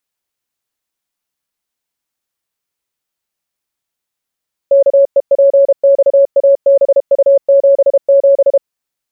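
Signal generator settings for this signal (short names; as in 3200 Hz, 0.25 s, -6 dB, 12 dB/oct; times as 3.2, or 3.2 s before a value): Morse "KEPXABU77" 32 wpm 555 Hz -4 dBFS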